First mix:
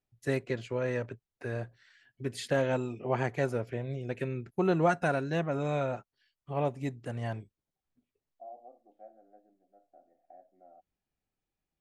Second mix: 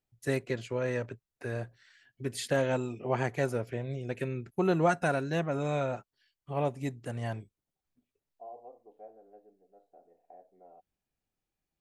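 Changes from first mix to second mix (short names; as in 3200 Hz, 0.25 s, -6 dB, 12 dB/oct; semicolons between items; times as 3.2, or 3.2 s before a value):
first voice: add high shelf 8000 Hz +10 dB; second voice: remove fixed phaser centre 660 Hz, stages 8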